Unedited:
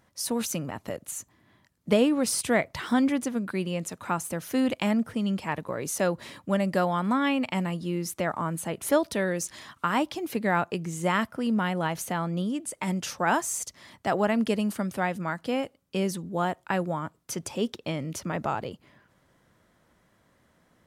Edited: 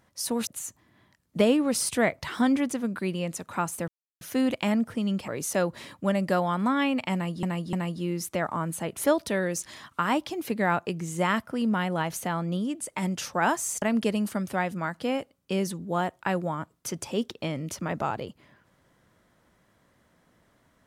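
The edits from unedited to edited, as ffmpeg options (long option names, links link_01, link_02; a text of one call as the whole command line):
ffmpeg -i in.wav -filter_complex "[0:a]asplit=7[link_01][link_02][link_03][link_04][link_05][link_06][link_07];[link_01]atrim=end=0.472[link_08];[link_02]atrim=start=0.988:end=4.4,asetpts=PTS-STARTPTS,afade=type=out:start_time=3.408:duration=0.004:curve=hsin,apad=pad_dur=0.33[link_09];[link_03]atrim=start=4.4:end=5.472,asetpts=PTS-STARTPTS,afade=type=in:duration=0.004:curve=hsin[link_10];[link_04]atrim=start=5.728:end=7.882[link_11];[link_05]atrim=start=7.578:end=7.882[link_12];[link_06]atrim=start=7.578:end=13.672[link_13];[link_07]atrim=start=14.258[link_14];[link_09][link_10]concat=n=2:v=0:a=1[link_15];[link_08][link_15]acrossfade=duration=0.004:curve1=hsin:curve2=hsin[link_16];[link_16][link_11]acrossfade=duration=0.004:curve1=hsin:curve2=hsin[link_17];[link_17][link_12]acrossfade=duration=0.004:curve1=hsin:curve2=hsin[link_18];[link_18][link_13]acrossfade=duration=0.004:curve1=hsin:curve2=hsin[link_19];[link_19][link_14]acrossfade=duration=0.004:curve1=hsin:curve2=hsin" out.wav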